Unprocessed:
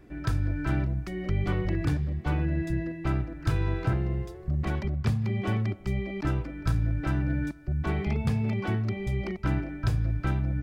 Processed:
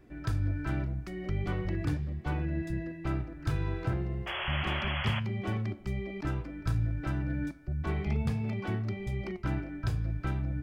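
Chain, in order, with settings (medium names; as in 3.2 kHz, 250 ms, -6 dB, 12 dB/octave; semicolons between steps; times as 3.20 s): painted sound noise, 4.26–5.20 s, 530–3400 Hz -31 dBFS; flange 0.43 Hz, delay 7.9 ms, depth 6.1 ms, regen +81%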